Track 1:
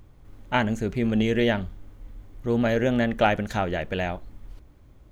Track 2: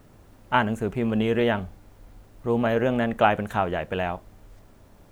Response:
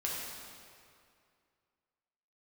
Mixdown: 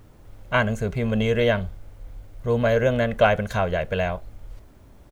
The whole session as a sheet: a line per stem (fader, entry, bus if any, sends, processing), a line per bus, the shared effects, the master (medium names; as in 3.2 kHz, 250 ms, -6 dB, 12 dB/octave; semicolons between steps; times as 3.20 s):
0.0 dB, 0.00 s, no send, none
-1.5 dB, 2.2 ms, no send, none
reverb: none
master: none